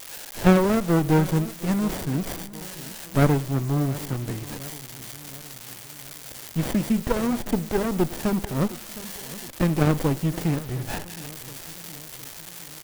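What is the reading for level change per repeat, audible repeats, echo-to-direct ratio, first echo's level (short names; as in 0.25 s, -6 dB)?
-5.0 dB, 4, -17.0 dB, -18.5 dB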